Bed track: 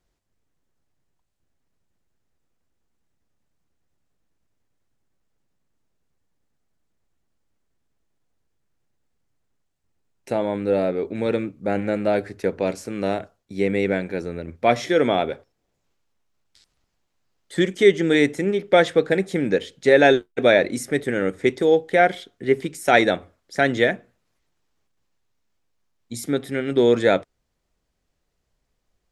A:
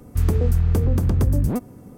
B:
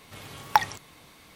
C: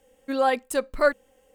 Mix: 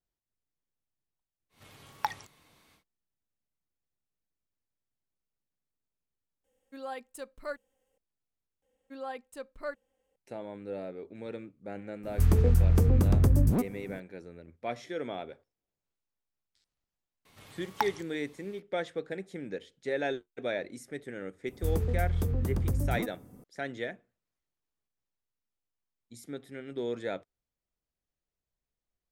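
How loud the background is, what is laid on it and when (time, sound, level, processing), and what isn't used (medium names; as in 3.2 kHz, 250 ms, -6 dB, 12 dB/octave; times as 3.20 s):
bed track -17.5 dB
1.49 s: add B -11 dB, fades 0.10 s
6.44 s: add C -17.5 dB + treble shelf 4.8 kHz +3.5 dB
8.62 s: replace with C -17 dB + treble shelf 6.2 kHz -4.5 dB
12.03 s: add A -3.5 dB
17.25 s: add B -9.5 dB
21.47 s: add A -10.5 dB + treble shelf 10 kHz +7 dB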